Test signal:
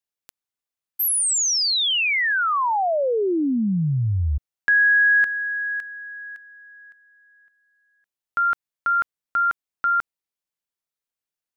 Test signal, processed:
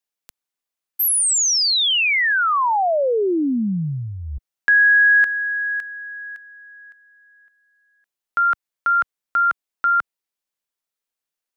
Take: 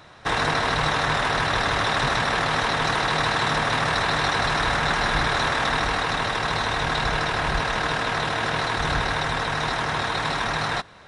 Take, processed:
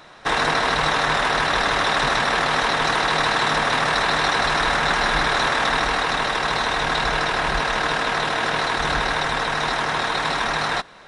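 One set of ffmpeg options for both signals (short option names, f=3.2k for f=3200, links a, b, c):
-af "equalizer=f=92:t=o:w=1.2:g=-12.5,volume=3dB"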